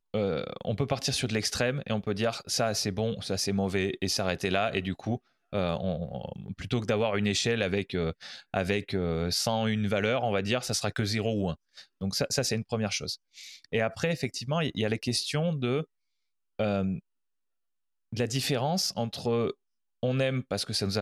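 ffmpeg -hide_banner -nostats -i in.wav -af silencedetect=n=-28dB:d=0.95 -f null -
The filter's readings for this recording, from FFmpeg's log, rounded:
silence_start: 16.95
silence_end: 18.13 | silence_duration: 1.17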